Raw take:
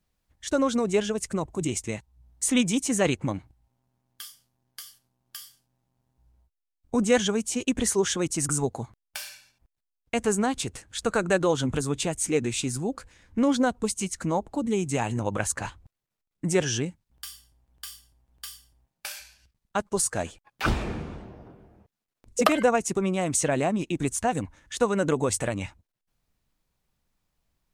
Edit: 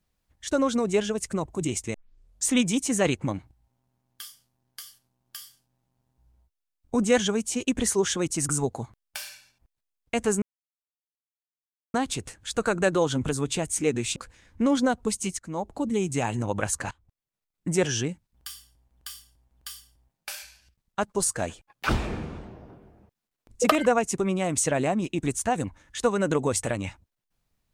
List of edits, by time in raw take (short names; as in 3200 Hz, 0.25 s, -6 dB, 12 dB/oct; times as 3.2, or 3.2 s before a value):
1.94 tape start 0.54 s
10.42 insert silence 1.52 s
12.64–12.93 cut
14.16–14.52 fade in, from -19.5 dB
15.68–16.49 fade in, from -19.5 dB